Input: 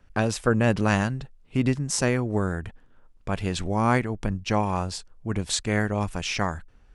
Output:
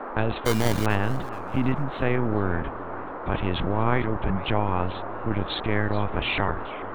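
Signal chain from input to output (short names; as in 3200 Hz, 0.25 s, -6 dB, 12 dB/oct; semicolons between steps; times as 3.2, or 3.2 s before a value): LPC vocoder at 8 kHz pitch kept; in parallel at -3 dB: negative-ratio compressor -28 dBFS; on the sum: band noise 240–1300 Hz -33 dBFS; 0.45–0.86 sample-rate reducer 2600 Hz, jitter 0%; warbling echo 0.437 s, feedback 35%, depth 218 cents, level -17 dB; gain -2.5 dB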